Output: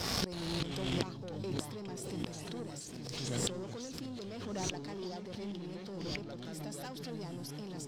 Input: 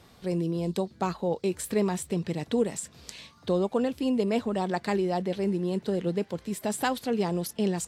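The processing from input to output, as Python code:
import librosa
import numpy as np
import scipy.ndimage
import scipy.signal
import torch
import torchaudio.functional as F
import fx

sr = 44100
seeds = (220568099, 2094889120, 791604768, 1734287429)

p1 = fx.leveller(x, sr, passes=2)
p2 = fx.peak_eq(p1, sr, hz=5300.0, db=13.0, octaves=0.41)
p3 = fx.echo_diffused(p2, sr, ms=632, feedback_pct=42, wet_db=-14.0)
p4 = fx.gate_flip(p3, sr, shuts_db=-26.0, range_db=-30)
p5 = fx.level_steps(p4, sr, step_db=12)
p6 = p4 + (p5 * librosa.db_to_amplitude(-2.5))
p7 = fx.echo_pitch(p6, sr, ms=321, semitones=-4, count=2, db_per_echo=-3.0)
p8 = fx.pre_swell(p7, sr, db_per_s=29.0)
y = p8 * librosa.db_to_amplitude(4.5)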